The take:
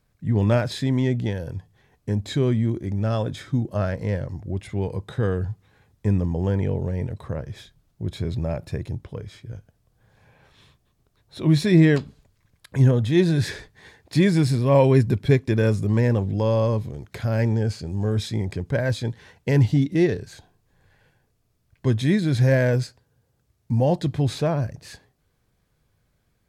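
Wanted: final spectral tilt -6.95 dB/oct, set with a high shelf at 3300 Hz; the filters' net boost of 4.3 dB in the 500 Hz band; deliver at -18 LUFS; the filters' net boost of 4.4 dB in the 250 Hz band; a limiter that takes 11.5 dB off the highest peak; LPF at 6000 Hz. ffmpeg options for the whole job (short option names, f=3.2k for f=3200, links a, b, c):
-af "lowpass=6k,equalizer=f=250:t=o:g=5,equalizer=f=500:t=o:g=3.5,highshelf=f=3.3k:g=9,volume=5.5dB,alimiter=limit=-7.5dB:level=0:latency=1"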